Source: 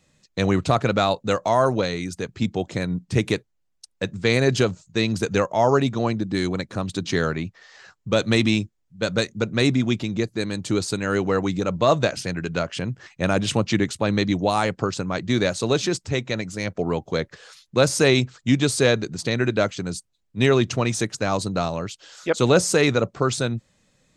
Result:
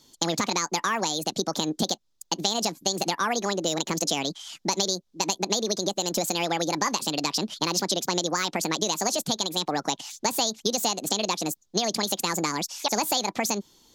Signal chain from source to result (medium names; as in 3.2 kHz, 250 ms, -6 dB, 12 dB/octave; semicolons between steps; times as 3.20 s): high-order bell 2.8 kHz +11 dB 1.3 oct; compression 6:1, threshold -23 dBFS, peak gain reduction 15 dB; speed mistake 45 rpm record played at 78 rpm; trim +1 dB